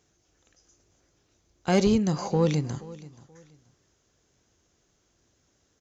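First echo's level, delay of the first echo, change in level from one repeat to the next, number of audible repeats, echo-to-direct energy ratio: −19.5 dB, 479 ms, −11.5 dB, 2, −19.0 dB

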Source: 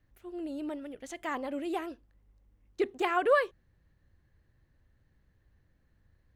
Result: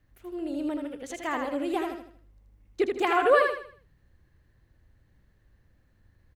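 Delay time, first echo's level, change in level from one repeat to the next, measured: 79 ms, −4.5 dB, −9.0 dB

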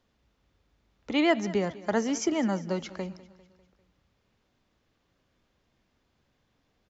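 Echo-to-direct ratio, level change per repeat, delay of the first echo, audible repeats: −17.5 dB, −5.5 dB, 199 ms, 3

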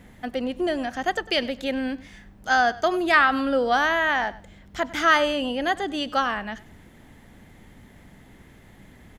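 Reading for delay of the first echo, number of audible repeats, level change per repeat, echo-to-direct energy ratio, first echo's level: 99 ms, 2, −13.0 dB, −19.0 dB, −19.0 dB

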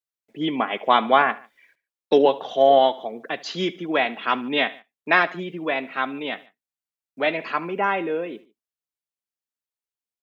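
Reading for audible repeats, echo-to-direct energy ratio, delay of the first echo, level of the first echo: 2, −19.0 dB, 73 ms, −20.0 dB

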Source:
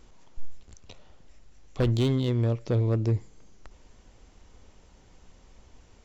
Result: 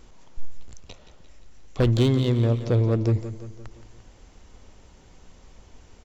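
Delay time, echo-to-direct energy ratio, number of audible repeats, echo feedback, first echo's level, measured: 173 ms, −10.5 dB, 5, 52%, −12.0 dB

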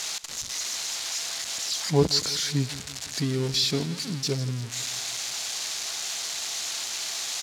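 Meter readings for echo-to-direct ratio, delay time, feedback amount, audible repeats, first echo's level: −15.5 dB, 168 ms, 53%, 4, −17.0 dB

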